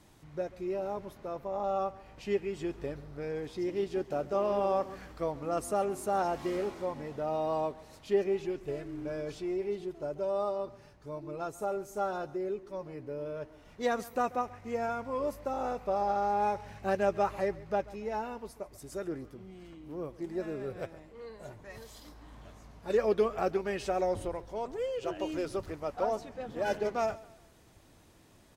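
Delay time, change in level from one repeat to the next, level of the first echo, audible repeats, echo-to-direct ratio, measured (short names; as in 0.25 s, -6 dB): 0.137 s, -8.0 dB, -20.0 dB, 2, -19.5 dB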